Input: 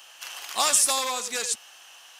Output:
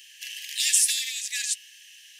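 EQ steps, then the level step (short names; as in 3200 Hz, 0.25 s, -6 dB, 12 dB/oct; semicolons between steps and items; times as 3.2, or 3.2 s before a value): dynamic EQ 2900 Hz, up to +4 dB, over -46 dBFS, Q 4.8; brick-wall FIR high-pass 1600 Hz; 0.0 dB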